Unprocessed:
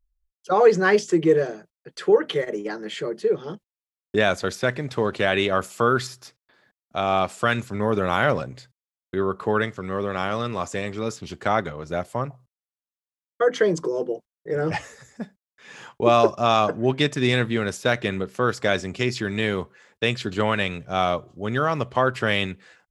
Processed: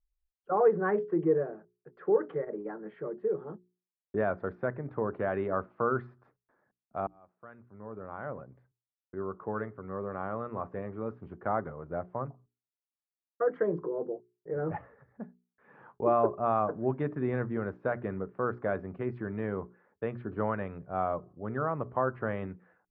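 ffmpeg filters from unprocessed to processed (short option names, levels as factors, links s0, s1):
-filter_complex "[0:a]asplit=2[s0][s1];[s0]atrim=end=7.07,asetpts=PTS-STARTPTS,afade=t=out:st=7.066:d=0.004:c=hsin[s2];[s1]atrim=start=7.07,asetpts=PTS-STARTPTS,afade=t=in:d=3.5[s3];[s2][s3]concat=n=2:v=0:a=1,lowpass=f=1400:w=0.5412,lowpass=f=1400:w=1.3066,bandreject=f=60:t=h:w=6,bandreject=f=120:t=h:w=6,bandreject=f=180:t=h:w=6,bandreject=f=240:t=h:w=6,bandreject=f=300:t=h:w=6,bandreject=f=360:t=h:w=6,bandreject=f=420:t=h:w=6,volume=0.398"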